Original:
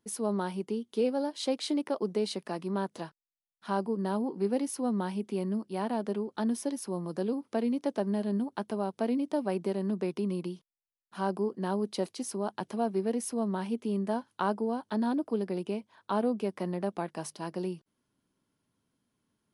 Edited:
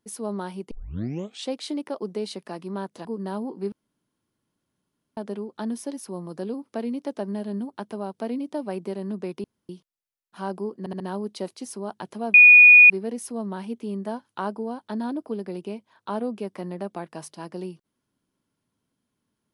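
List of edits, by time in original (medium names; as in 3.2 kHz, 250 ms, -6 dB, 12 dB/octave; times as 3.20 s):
0.71 s: tape start 0.79 s
3.05–3.84 s: delete
4.51–5.96 s: room tone
10.23–10.48 s: room tone
11.58 s: stutter 0.07 s, 4 plays
12.92 s: add tone 2.46 kHz -7 dBFS 0.56 s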